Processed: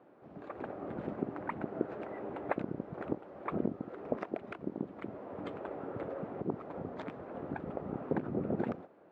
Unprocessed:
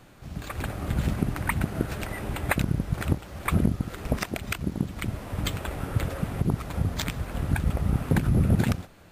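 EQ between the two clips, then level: ladder band-pass 510 Hz, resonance 20%; +8.5 dB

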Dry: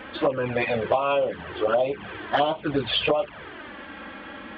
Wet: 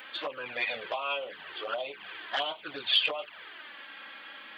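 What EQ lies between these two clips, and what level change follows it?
differentiator; +7.5 dB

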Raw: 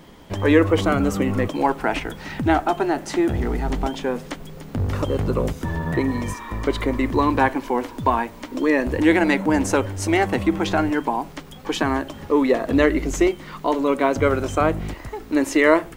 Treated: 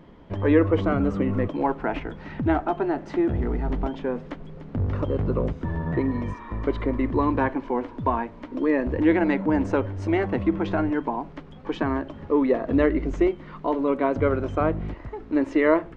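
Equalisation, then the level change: tape spacing loss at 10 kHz 34 dB; notch 790 Hz, Q 18; -1.5 dB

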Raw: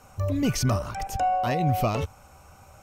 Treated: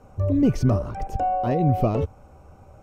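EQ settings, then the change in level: tilt -2.5 dB/oct; bell 390 Hz +10 dB 1.9 oct; -6.0 dB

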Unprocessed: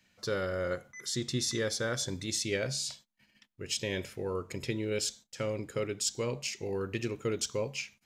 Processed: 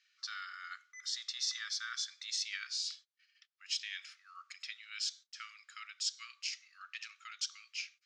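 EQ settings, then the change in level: brick-wall FIR high-pass 1100 Hz; ladder low-pass 6200 Hz, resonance 40%; +3.0 dB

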